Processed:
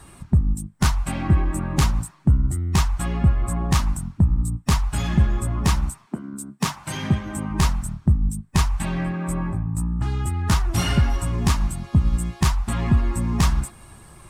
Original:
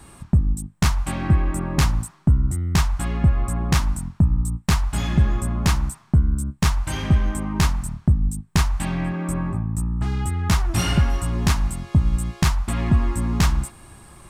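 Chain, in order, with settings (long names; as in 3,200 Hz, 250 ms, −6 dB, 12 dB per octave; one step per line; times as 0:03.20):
spectral magnitudes quantised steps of 15 dB
0:06.05–0:07.49: high-pass filter 260 Hz → 67 Hz 24 dB per octave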